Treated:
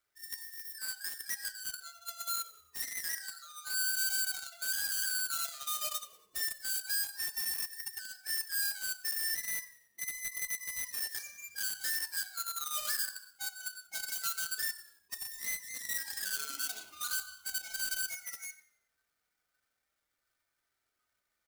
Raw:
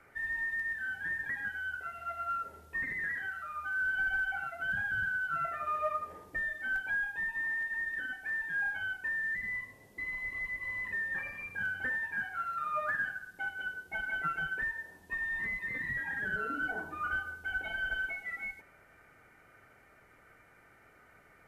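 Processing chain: half-waves squared off; pre-emphasis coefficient 0.97; spectral noise reduction 11 dB; low shelf 150 Hz +9 dB; in parallel at -5 dB: bit-crush 5-bit; on the sum: flange 0.24 Hz, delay 3 ms, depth 1.6 ms, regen -57%; on a send: frequency-shifting echo 93 ms, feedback 56%, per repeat -35 Hz, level -20 dB; on the sum: mismatched tape noise reduction decoder only; gain +3.5 dB

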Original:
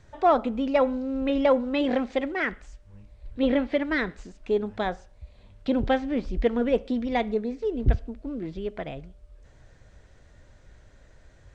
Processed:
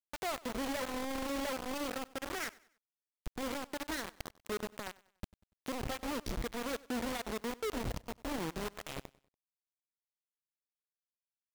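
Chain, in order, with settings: notches 60/120 Hz; low-pass opened by the level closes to 2200 Hz, open at -19 dBFS; compressor 5:1, threshold -33 dBFS, peak gain reduction 16 dB; limiter -32 dBFS, peak gain reduction 9 dB; bit-crush 6-bit; on a send: feedback echo 96 ms, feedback 38%, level -21.5 dB; on the sum: gain -1 dB

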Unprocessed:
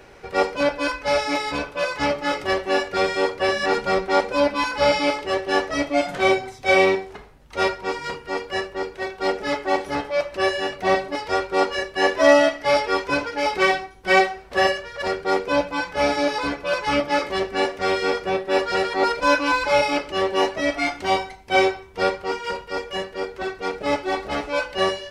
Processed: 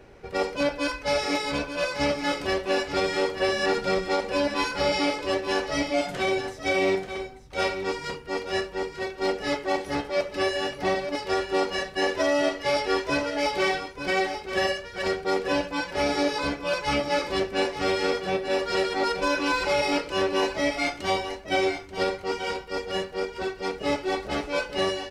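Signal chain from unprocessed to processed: bell 1100 Hz -5.5 dB 2.4 oct; limiter -15 dBFS, peak gain reduction 8 dB; echo 0.885 s -9 dB; mismatched tape noise reduction decoder only

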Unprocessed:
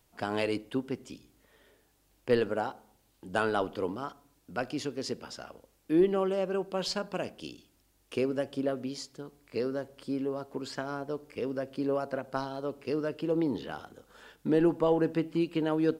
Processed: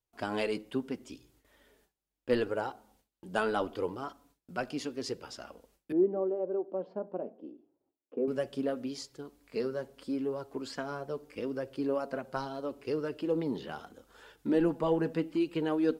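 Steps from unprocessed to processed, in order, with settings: gate with hold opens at -54 dBFS; flange 0.77 Hz, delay 1.9 ms, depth 3.7 ms, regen -38%; 5.92–8.28 Butterworth band-pass 410 Hz, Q 0.82; gain +2 dB

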